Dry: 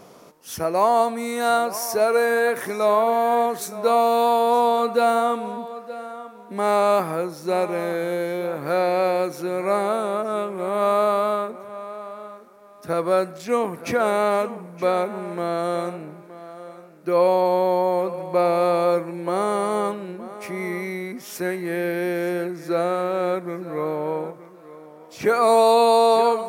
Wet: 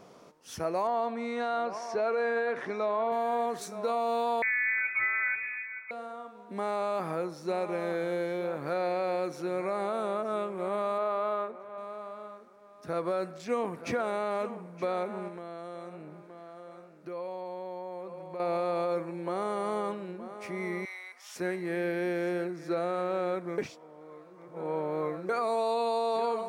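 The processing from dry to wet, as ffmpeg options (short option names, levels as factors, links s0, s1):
-filter_complex "[0:a]asettb=1/sr,asplit=3[s0][s1][s2];[s0]atrim=end=0.874[s3];[s1]atrim=start=0.87:end=3.12,asetpts=PTS-STARTPTS,afade=t=in:d=0.004:c=qsin,afade=t=out:st=2.246:d=0.004:c=qsin,highpass=130,lowpass=3800[s4];[s2]atrim=start=3.116[s5];[s3][s4]acrossfade=d=0.004:c1=hsin:c2=qsin[s6];[s6][s5]acrossfade=d=0.004:c1=qsin:c2=hsin,asettb=1/sr,asplit=3[s7][s8][s9];[s7]atrim=end=4.424[s10];[s8]atrim=start=4.42:end=5.91,asetpts=PTS-STARTPTS,afade=t=in:d=0.004:c=qsin,afade=t=out:st=1.486:d=0.004:c=qsin,lowpass=f=2300:t=q:w=0.5098,lowpass=f=2300:t=q:w=0.6013,lowpass=f=2300:t=q:w=0.9,lowpass=f=2300:t=q:w=2.563,afreqshift=-2700[s11];[s9]atrim=start=5.906[s12];[s10][s11]acrossfade=d=0.004:c1=hsin:c2=qsin[s13];[s13][s12]acrossfade=d=0.004:c1=qsin:c2=hsin,asettb=1/sr,asplit=3[s14][s15][s16];[s14]atrim=end=10.984[s17];[s15]atrim=start=10.98:end=11.78,asetpts=PTS-STARTPTS,afade=t=in:d=0.004:c=qsin,afade=t=out:st=0.796:d=0.004:c=qsin,bass=f=250:g=-9,treble=f=4000:g=-11[s18];[s16]atrim=start=11.776[s19];[s17][s18]acrossfade=d=0.004:c1=hsin:c2=qsin[s20];[s20][s19]acrossfade=d=0.004:c1=qsin:c2=hsin,asettb=1/sr,asplit=3[s21][s22][s23];[s21]atrim=end=15.284[s24];[s22]atrim=start=15.28:end=18.4,asetpts=PTS-STARTPTS,afade=t=in:d=0.004:c=qsin,afade=t=out:st=3.116:d=0.004:c=qsin,acompressor=threshold=0.0178:ratio=2.5:attack=3.2:release=140:knee=1:detection=peak[s25];[s23]atrim=start=18.396[s26];[s24][s25]acrossfade=d=0.004:c1=hsin:c2=qsin[s27];[s27][s26]acrossfade=d=0.004:c1=qsin:c2=hsin,asettb=1/sr,asplit=3[s28][s29][s30];[s28]atrim=end=20.854[s31];[s29]atrim=start=20.85:end=21.36,asetpts=PTS-STARTPTS,afade=t=in:d=0.004:c=qsin,afade=t=out:st=0.506:d=0.004:c=qsin,highpass=f=800:w=0.5412,highpass=f=800:w=1.3066[s32];[s30]atrim=start=21.356[s33];[s31][s32]acrossfade=d=0.004:c1=hsin:c2=qsin[s34];[s34][s33]acrossfade=d=0.004:c1=qsin:c2=hsin,asplit=3[s35][s36][s37];[s35]atrim=end=23.582[s38];[s36]atrim=start=23.578:end=25.292,asetpts=PTS-STARTPTS,areverse[s39];[s37]atrim=start=25.288[s40];[s38][s39]acrossfade=d=0.004:c1=hsin:c2=hsin[s41];[s41][s40]acrossfade=d=0.004:c1=hsin:c2=hsin,equalizer=f=13000:w=1.1:g=-14.5,alimiter=limit=0.188:level=0:latency=1:release=63,volume=0.473"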